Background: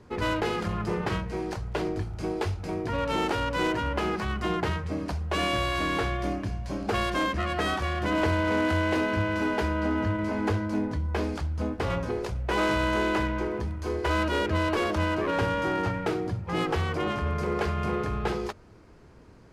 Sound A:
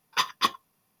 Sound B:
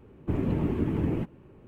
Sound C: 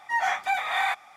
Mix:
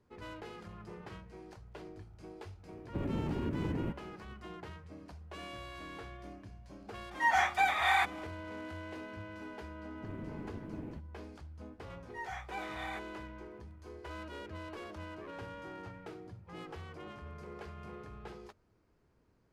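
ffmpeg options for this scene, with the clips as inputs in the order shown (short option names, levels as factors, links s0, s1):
-filter_complex "[2:a]asplit=2[s0][s1];[3:a]asplit=2[s2][s3];[0:a]volume=0.112[s4];[s0]acompressor=threshold=0.0447:ratio=6:attack=3.2:release=140:knee=1:detection=peak[s5];[s1]aeval=exprs='clip(val(0),-1,0.0422)':c=same[s6];[s5]atrim=end=1.67,asetpts=PTS-STARTPTS,volume=0.668,afade=t=in:d=0.004:c=hsin,afade=t=out:st=1.666:d=0.004:c=hsin,adelay=2670[s7];[s2]atrim=end=1.16,asetpts=PTS-STARTPTS,volume=0.75,afade=t=in:d=0.004:c=hsin,afade=t=out:st=1.156:d=0.004:c=hsin,adelay=7110[s8];[s6]atrim=end=1.67,asetpts=PTS-STARTPTS,volume=0.15,afade=t=in:d=0.004:c=hsin,afade=t=out:st=1.666:d=0.004:c=hsin,adelay=9750[s9];[s3]atrim=end=1.16,asetpts=PTS-STARTPTS,volume=0.133,afade=t=in:d=0.004:c=hsin,afade=t=out:st=1.156:d=0.004:c=hsin,adelay=12050[s10];[s4][s7][s8][s9][s10]amix=inputs=5:normalize=0"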